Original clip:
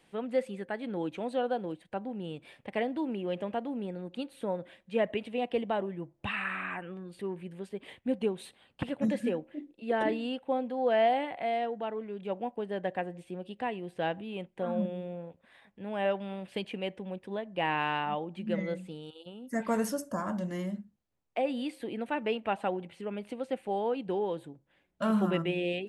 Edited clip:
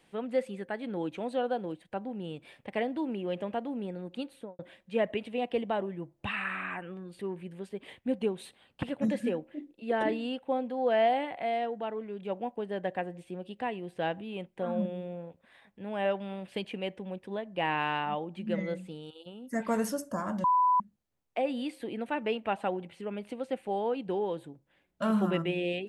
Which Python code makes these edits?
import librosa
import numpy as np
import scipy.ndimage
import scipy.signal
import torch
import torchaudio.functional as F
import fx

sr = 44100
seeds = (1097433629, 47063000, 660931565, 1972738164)

y = fx.studio_fade_out(x, sr, start_s=4.29, length_s=0.3)
y = fx.edit(y, sr, fx.bleep(start_s=20.44, length_s=0.36, hz=997.0, db=-21.0), tone=tone)